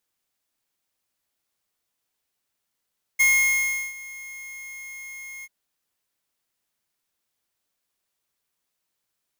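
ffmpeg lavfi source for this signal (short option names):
-f lavfi -i "aevalsrc='0.141*(2*lt(mod(2150*t,1),0.5)-1)':d=2.29:s=44100,afade=t=in:d=0.016,afade=t=out:st=0.016:d=0.723:silence=0.0841,afade=t=out:st=2.25:d=0.04"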